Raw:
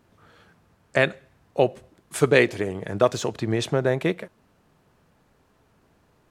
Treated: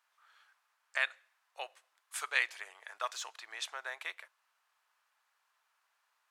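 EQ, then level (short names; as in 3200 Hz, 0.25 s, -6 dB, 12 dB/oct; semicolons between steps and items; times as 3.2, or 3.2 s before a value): HPF 990 Hz 24 dB/oct; -8.0 dB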